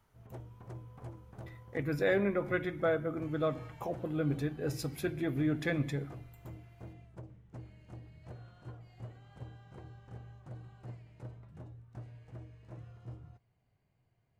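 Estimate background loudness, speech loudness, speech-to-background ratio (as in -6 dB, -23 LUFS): -50.5 LUFS, -34.0 LUFS, 16.5 dB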